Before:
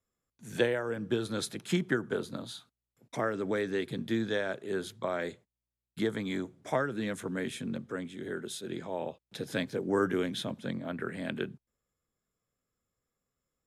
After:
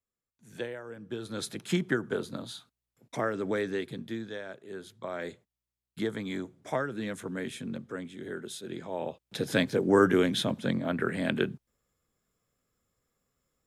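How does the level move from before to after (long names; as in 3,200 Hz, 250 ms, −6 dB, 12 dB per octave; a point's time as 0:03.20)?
0:01.04 −9 dB
0:01.53 +1 dB
0:03.66 +1 dB
0:04.31 −8 dB
0:04.84 −8 dB
0:05.30 −1 dB
0:08.81 −1 dB
0:09.45 +6.5 dB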